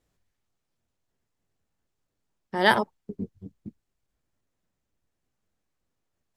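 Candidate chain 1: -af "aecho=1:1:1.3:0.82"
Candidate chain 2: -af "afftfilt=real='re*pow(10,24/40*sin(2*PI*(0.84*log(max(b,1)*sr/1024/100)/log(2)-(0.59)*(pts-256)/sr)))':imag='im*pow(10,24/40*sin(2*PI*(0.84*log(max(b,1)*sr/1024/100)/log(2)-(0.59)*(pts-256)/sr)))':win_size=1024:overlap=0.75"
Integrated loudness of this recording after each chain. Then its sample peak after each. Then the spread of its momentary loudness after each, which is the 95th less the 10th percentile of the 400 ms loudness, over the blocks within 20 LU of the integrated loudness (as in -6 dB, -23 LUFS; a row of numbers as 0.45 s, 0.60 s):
-22.0 LUFS, -20.5 LUFS; -2.0 dBFS, -3.0 dBFS; 18 LU, 17 LU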